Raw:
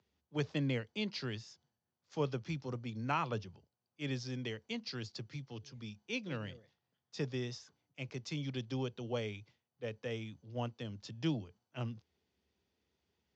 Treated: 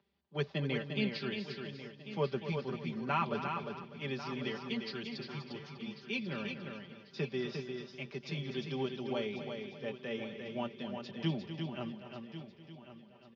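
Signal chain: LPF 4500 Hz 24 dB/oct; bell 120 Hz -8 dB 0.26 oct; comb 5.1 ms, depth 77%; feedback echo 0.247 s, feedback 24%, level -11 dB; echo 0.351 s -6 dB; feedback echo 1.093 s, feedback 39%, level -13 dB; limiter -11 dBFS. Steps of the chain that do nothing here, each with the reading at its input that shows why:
limiter -11 dBFS: input peak -20.0 dBFS

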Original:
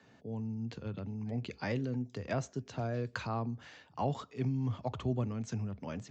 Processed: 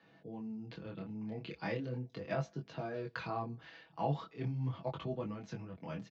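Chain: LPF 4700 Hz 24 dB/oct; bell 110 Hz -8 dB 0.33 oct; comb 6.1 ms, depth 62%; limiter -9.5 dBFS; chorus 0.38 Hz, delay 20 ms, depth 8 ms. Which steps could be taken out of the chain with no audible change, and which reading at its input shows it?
limiter -9.5 dBFS: input peak -19.0 dBFS

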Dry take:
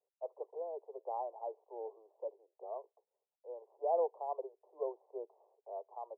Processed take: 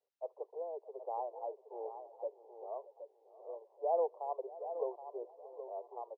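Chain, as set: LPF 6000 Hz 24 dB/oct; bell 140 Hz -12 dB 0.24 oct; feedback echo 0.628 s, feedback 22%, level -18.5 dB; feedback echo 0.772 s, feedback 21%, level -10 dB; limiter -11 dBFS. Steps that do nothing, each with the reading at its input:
LPF 6000 Hz: input band ends at 1100 Hz; bell 140 Hz: input band starts at 320 Hz; limiter -11 dBFS: input peak -22.5 dBFS

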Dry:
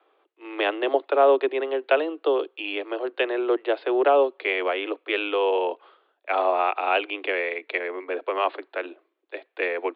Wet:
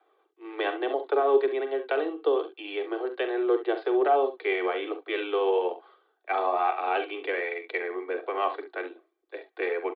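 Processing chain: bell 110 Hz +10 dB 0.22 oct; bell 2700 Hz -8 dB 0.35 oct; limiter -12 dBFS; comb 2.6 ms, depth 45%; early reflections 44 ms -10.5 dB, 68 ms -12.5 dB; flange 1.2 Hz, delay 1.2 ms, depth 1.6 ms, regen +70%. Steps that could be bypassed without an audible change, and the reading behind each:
bell 110 Hz: input band starts at 240 Hz

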